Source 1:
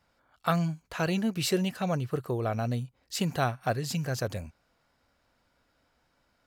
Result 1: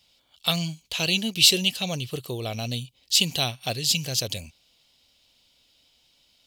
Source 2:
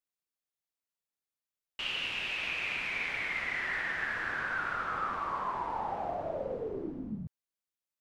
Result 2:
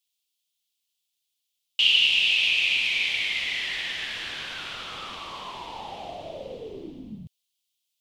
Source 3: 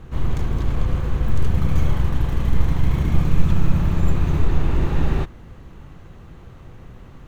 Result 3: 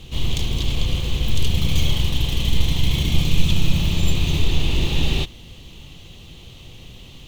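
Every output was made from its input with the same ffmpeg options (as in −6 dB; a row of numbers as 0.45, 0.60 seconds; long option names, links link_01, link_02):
-af "highshelf=frequency=2200:width_type=q:width=3:gain=13,volume=-1dB"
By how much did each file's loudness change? +7.0, +11.5, +0.5 LU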